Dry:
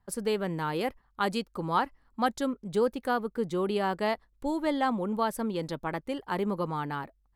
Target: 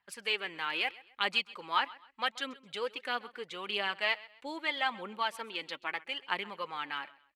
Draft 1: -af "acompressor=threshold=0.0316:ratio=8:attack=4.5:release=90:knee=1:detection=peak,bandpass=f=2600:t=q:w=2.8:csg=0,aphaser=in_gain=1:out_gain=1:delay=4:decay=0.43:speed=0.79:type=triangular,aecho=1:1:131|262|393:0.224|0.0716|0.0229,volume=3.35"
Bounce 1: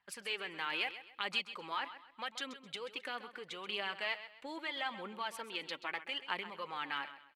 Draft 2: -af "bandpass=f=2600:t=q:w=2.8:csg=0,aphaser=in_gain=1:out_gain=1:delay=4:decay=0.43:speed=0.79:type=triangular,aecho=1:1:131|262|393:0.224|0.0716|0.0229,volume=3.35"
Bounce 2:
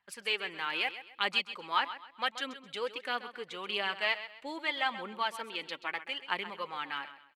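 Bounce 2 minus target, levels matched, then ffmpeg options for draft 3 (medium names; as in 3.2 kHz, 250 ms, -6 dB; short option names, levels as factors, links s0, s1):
echo-to-direct +7.5 dB
-af "bandpass=f=2600:t=q:w=2.8:csg=0,aphaser=in_gain=1:out_gain=1:delay=4:decay=0.43:speed=0.79:type=triangular,aecho=1:1:131|262:0.0944|0.0302,volume=3.35"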